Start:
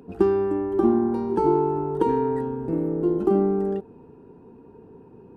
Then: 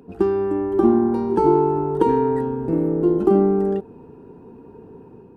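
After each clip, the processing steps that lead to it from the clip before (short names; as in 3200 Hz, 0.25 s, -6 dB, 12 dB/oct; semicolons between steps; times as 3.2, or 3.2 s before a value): AGC gain up to 5 dB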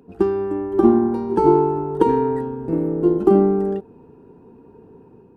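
upward expander 1.5:1, over -25 dBFS; gain +3 dB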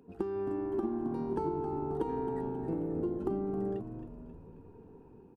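compressor 10:1, threshold -22 dBFS, peak gain reduction 14 dB; on a send: frequency-shifting echo 0.268 s, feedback 56%, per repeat -76 Hz, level -10 dB; on the sum: gain -8.5 dB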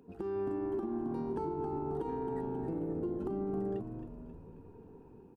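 limiter -28 dBFS, peak gain reduction 7 dB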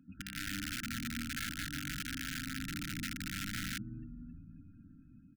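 loudest bins only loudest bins 64; wrapped overs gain 30.5 dB; brick-wall FIR band-stop 310–1300 Hz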